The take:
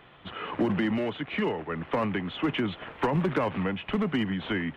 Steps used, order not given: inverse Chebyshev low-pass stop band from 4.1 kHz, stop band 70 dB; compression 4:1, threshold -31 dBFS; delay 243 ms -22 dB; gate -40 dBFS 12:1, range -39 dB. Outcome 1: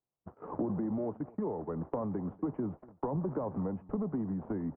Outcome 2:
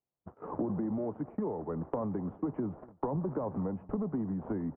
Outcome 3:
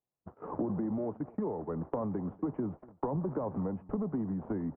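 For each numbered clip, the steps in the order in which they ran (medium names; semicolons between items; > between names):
compression > inverse Chebyshev low-pass > gate > delay; inverse Chebyshev low-pass > gate > compression > delay; inverse Chebyshev low-pass > compression > gate > delay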